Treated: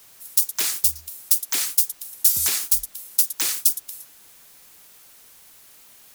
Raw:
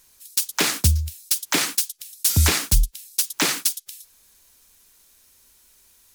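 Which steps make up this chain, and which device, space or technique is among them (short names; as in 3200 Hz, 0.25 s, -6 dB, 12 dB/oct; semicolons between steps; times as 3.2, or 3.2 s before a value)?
turntable without a phono preamp (RIAA curve recording; white noise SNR 27 dB); gain -11.5 dB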